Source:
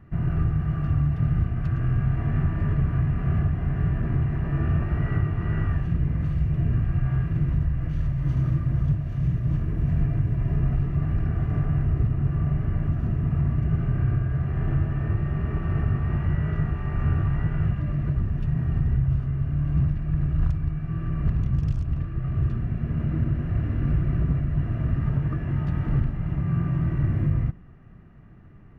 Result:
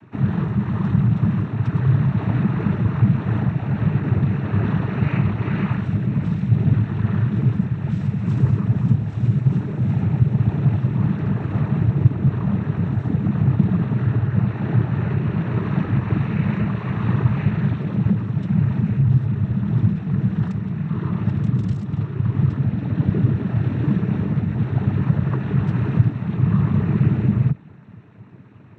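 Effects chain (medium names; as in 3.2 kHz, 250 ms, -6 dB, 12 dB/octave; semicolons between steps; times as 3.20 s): noise-vocoded speech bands 12; trim +7 dB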